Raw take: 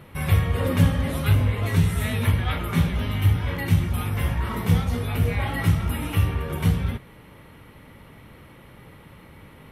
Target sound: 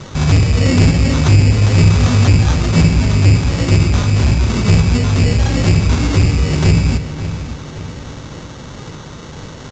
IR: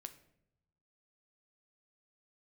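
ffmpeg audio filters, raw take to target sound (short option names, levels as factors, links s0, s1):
-filter_complex "[0:a]acrossover=split=440|2400[s0][s1][s2];[s1]acompressor=threshold=0.00398:ratio=6[s3];[s0][s3][s2]amix=inputs=3:normalize=0,acrusher=samples=18:mix=1:aa=0.000001,asoftclip=type=tanh:threshold=0.0891,asplit=2[s4][s5];[s5]adelay=560,lowpass=f=4600:p=1,volume=0.251,asplit=2[s6][s7];[s7]adelay=560,lowpass=f=4600:p=1,volume=0.46,asplit=2[s8][s9];[s9]adelay=560,lowpass=f=4600:p=1,volume=0.46,asplit=2[s10][s11];[s11]adelay=560,lowpass=f=4600:p=1,volume=0.46,asplit=2[s12][s13];[s13]adelay=560,lowpass=f=4600:p=1,volume=0.46[s14];[s4][s6][s8][s10][s12][s14]amix=inputs=6:normalize=0,asplit=2[s15][s16];[1:a]atrim=start_sample=2205,highshelf=f=3000:g=11[s17];[s16][s17]afir=irnorm=-1:irlink=0,volume=4.47[s18];[s15][s18]amix=inputs=2:normalize=0,aresample=16000,aresample=44100,volume=1.5"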